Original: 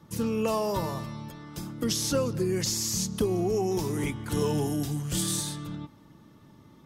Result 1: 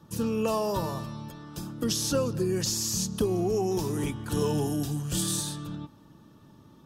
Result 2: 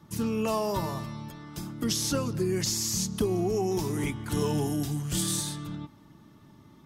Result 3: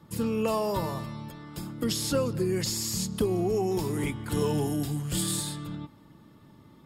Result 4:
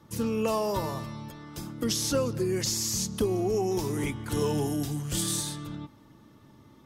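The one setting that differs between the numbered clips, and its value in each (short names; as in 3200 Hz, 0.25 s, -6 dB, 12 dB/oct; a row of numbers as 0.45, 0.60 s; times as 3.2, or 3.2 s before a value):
notch, frequency: 2100, 500, 6000, 170 Hz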